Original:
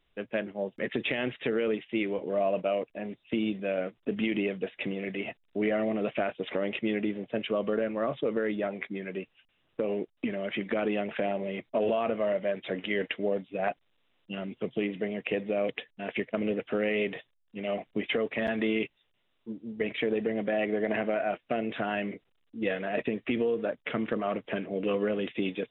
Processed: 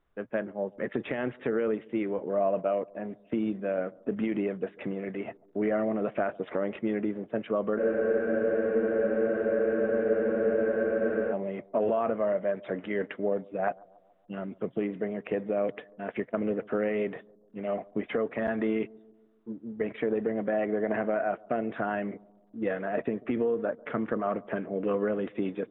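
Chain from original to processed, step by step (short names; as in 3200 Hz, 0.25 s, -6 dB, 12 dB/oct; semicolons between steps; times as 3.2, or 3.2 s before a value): resonant high shelf 2000 Hz -11 dB, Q 1.5; analogue delay 0.141 s, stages 1024, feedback 53%, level -24 dB; spectral freeze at 7.8, 3.52 s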